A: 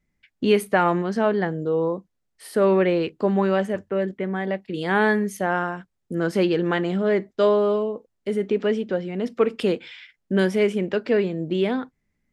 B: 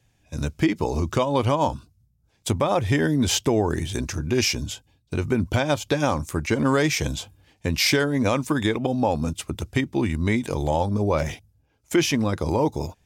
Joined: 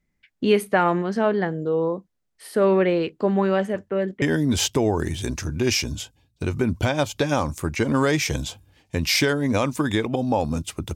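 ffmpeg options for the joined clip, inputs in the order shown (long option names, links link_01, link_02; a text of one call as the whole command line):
ffmpeg -i cue0.wav -i cue1.wav -filter_complex "[0:a]apad=whole_dur=10.95,atrim=end=10.95,atrim=end=4.222[link_01];[1:a]atrim=start=2.928:end=9.66[link_02];[link_01][link_02]acrossfade=duration=0.004:curve1=hsin:curve2=hsin" out.wav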